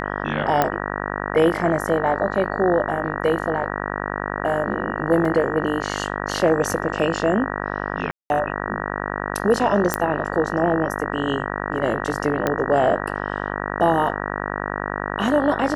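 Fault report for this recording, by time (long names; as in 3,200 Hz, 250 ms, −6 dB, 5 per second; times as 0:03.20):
mains buzz 50 Hz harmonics 38 −27 dBFS
0:00.62: click −5 dBFS
0:05.25: drop-out 3.7 ms
0:08.11–0:08.30: drop-out 191 ms
0:09.94: click −3 dBFS
0:12.47: click −7 dBFS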